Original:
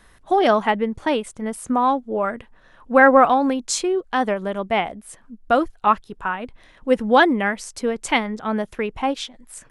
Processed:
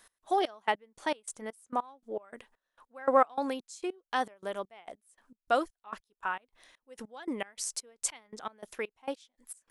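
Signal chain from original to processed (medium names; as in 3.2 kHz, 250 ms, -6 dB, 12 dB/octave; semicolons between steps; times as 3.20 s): tone controls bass -15 dB, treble +10 dB; trance gate "x..xxx...x...x" 200 bpm -24 dB; trim -8.5 dB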